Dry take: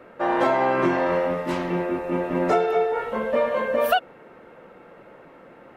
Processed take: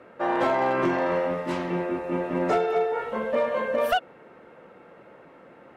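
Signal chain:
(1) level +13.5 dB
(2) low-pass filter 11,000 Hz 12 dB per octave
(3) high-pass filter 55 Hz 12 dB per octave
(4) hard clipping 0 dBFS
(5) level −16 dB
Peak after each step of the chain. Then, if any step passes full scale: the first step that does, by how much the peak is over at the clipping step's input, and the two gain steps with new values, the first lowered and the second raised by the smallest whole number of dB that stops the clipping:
+7.0, +7.0, +7.0, 0.0, −16.0 dBFS
step 1, 7.0 dB
step 1 +6.5 dB, step 5 −9 dB

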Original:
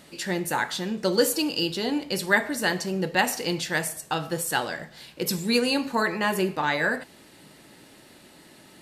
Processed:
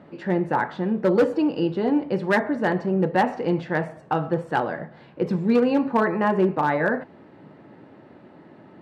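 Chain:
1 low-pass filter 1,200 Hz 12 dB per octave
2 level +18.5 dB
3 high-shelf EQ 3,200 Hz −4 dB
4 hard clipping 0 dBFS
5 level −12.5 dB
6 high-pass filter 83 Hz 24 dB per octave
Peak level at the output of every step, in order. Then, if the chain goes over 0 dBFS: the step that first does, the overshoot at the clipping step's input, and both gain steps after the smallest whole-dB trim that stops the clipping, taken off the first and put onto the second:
−11.0, +7.5, +7.5, 0.0, −12.5, −8.5 dBFS
step 2, 7.5 dB
step 2 +10.5 dB, step 5 −4.5 dB

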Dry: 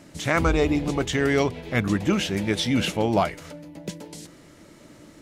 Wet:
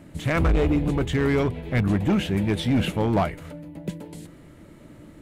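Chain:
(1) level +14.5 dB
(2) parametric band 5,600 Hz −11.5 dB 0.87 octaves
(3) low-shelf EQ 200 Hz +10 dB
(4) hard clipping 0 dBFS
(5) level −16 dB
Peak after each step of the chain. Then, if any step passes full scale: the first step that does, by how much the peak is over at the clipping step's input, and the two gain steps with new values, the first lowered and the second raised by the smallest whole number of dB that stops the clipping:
+6.0, +5.0, +9.5, 0.0, −16.0 dBFS
step 1, 9.5 dB
step 1 +4.5 dB, step 5 −6 dB

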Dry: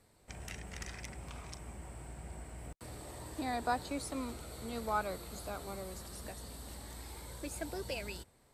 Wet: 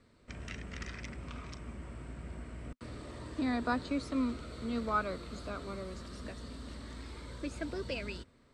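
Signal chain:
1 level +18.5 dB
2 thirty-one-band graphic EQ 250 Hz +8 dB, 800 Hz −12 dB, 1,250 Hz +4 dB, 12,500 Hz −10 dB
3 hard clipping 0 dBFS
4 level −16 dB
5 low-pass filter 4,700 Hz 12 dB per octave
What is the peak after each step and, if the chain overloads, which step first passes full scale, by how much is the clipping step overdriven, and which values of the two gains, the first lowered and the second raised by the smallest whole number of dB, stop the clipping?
−1.5, −2.5, −2.5, −18.5, −19.0 dBFS
no step passes full scale

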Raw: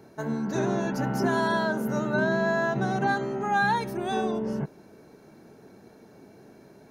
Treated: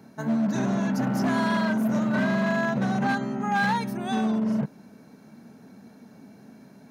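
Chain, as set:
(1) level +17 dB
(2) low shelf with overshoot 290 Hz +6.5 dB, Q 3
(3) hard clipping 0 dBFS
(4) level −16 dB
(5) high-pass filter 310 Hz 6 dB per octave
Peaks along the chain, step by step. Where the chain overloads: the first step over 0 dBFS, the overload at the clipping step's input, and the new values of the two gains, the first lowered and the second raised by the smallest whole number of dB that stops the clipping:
+3.0, +10.0, 0.0, −16.0, −13.0 dBFS
step 1, 10.0 dB
step 1 +7 dB, step 4 −6 dB

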